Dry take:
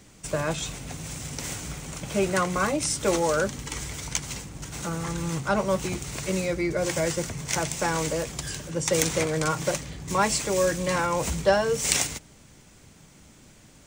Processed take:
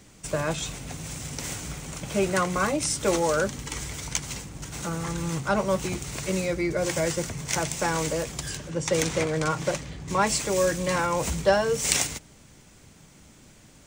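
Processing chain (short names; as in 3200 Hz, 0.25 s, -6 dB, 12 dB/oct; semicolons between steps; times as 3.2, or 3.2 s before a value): 8.57–10.27 high shelf 8200 Hz -10.5 dB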